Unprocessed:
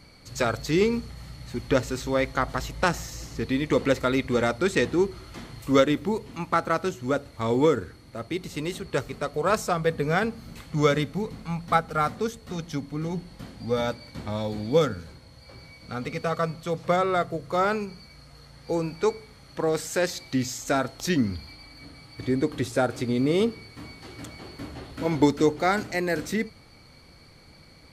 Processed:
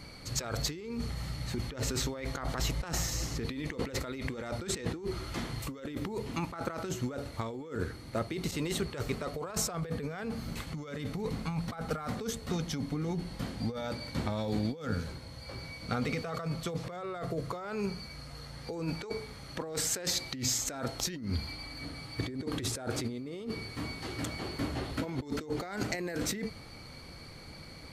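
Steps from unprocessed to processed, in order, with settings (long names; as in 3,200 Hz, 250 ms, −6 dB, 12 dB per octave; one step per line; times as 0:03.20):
0:08.51–0:10.67: downward expander −41 dBFS
compressor whose output falls as the input rises −33 dBFS, ratio −1
level −2.5 dB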